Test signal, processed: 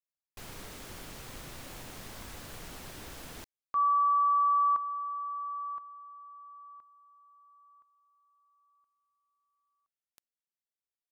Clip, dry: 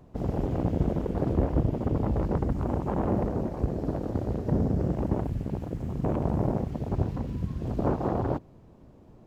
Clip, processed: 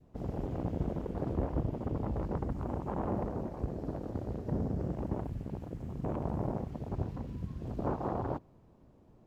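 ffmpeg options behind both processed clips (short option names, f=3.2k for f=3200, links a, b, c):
-af "adynamicequalizer=threshold=0.0178:dfrequency=1000:dqfactor=1.2:tfrequency=1000:tqfactor=1.2:attack=5:release=100:ratio=0.375:range=3:mode=boostabove:tftype=bell,volume=-8dB"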